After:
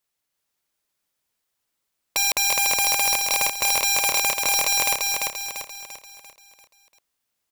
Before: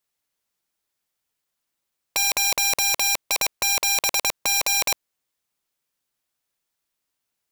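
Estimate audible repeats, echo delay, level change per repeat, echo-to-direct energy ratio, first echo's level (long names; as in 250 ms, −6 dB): 5, 343 ms, −7.0 dB, −2.0 dB, −3.0 dB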